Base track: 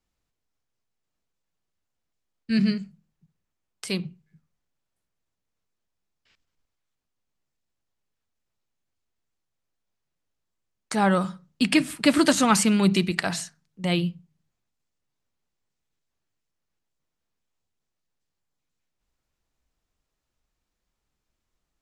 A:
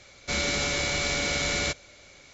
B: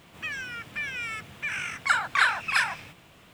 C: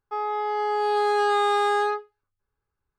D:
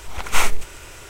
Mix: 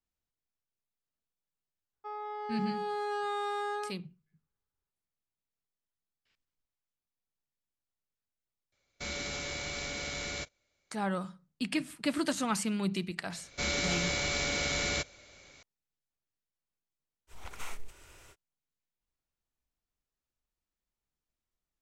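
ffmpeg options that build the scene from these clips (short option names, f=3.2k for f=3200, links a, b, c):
-filter_complex "[1:a]asplit=2[a][b];[0:a]volume=-12dB[c];[a]agate=range=-16dB:threshold=-41dB:ratio=16:release=100:detection=peak[d];[4:a]alimiter=limit=-11.5dB:level=0:latency=1:release=403[e];[3:a]atrim=end=2.98,asetpts=PTS-STARTPTS,volume=-12.5dB,afade=t=in:d=0.004:c=hsin,afade=t=out:st=2.976:d=0.004:c=hsin,adelay=1930[f];[d]atrim=end=2.33,asetpts=PTS-STARTPTS,volume=-10.5dB,afade=t=in:d=0.004:c=hsin,afade=t=out:st=2.326:d=0.004:c=hsin,adelay=8720[g];[b]atrim=end=2.33,asetpts=PTS-STARTPTS,volume=-4.5dB,afade=t=in:d=0.004:c=hsin,afade=t=out:st=2.326:d=0.004:c=hsin,adelay=13300[h];[e]atrim=end=1.09,asetpts=PTS-STARTPTS,volume=-16dB,afade=t=in:d=0.05,afade=t=out:st=1.04:d=0.05,adelay=17270[i];[c][f][g][h][i]amix=inputs=5:normalize=0"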